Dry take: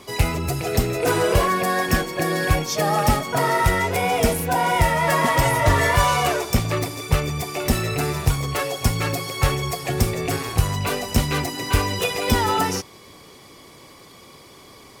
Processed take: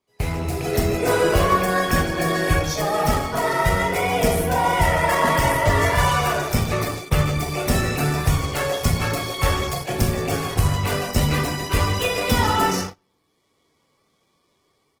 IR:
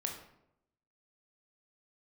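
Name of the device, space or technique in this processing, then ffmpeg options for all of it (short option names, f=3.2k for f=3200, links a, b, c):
speakerphone in a meeting room: -filter_complex "[1:a]atrim=start_sample=2205[a];[0:a][a]afir=irnorm=-1:irlink=0,asplit=2[b][c];[c]adelay=150,highpass=300,lowpass=3.4k,asoftclip=type=hard:threshold=-13.5dB,volume=-10dB[d];[b][d]amix=inputs=2:normalize=0,dynaudnorm=f=310:g=3:m=11.5dB,agate=range=-28dB:threshold=-22dB:ratio=16:detection=peak,volume=-5.5dB" -ar 48000 -c:a libopus -b:a 16k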